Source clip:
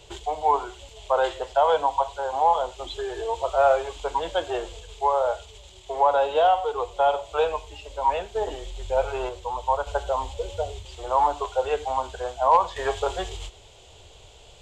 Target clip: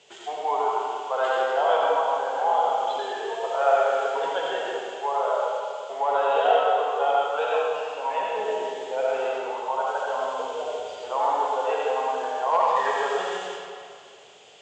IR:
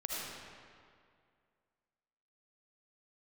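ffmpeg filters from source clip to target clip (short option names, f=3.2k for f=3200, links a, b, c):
-filter_complex "[0:a]highpass=f=200:w=0.5412,highpass=f=200:w=1.3066,equalizer=f=340:t=q:w=4:g=-9,equalizer=f=580:t=q:w=4:g=-5,equalizer=f=970:t=q:w=4:g=-5,equalizer=f=1.8k:t=q:w=4:g=4,equalizer=f=3.9k:t=q:w=4:g=-6,lowpass=f=7.3k:w=0.5412,lowpass=f=7.3k:w=1.3066[a];[1:a]atrim=start_sample=2205[b];[a][b]afir=irnorm=-1:irlink=0"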